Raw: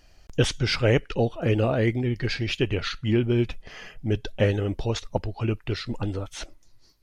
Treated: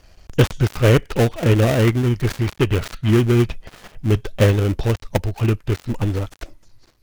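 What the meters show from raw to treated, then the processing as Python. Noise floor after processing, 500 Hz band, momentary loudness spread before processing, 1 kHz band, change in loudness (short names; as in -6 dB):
-53 dBFS, +5.5 dB, 11 LU, +6.5 dB, +6.5 dB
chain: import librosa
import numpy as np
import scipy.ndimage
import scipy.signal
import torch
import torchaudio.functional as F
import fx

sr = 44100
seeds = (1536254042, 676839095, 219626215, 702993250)

y = fx.dead_time(x, sr, dead_ms=0.28)
y = fx.peak_eq(y, sr, hz=88.0, db=3.5, octaves=1.4)
y = F.gain(torch.from_numpy(y), 6.0).numpy()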